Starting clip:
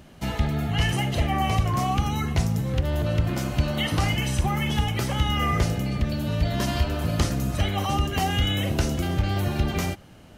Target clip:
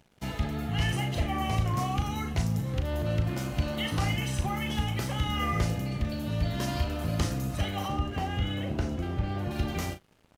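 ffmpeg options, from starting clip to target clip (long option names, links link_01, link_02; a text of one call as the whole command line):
ffmpeg -i in.wav -filter_complex "[0:a]asettb=1/sr,asplit=3[link_01][link_02][link_03];[link_01]atrim=end=7.884[link_04];[link_02]atrim=start=7.88:end=9.51,asetpts=PTS-STARTPTS,afade=type=in:duration=0.004:curve=qsin,afade=type=out:start_time=1.626:duration=0.004:curve=qsin,lowpass=frequency=1700:poles=1[link_05];[link_03]atrim=start=9.506[link_06];[link_04][link_05]acrossfade=duration=0.004:curve1=hsin:curve2=qsin[link_07];[link_07][link_06]acrossfade=duration=0.004:curve1=qsin:curve2=hsin,aeval=exprs='sgn(val(0))*max(abs(val(0))-0.00447,0)':channel_layout=same,asplit=2[link_08][link_09];[link_09]adelay=37,volume=-8.5dB[link_10];[link_08][link_10]amix=inputs=2:normalize=0,volume=-5.5dB" out.wav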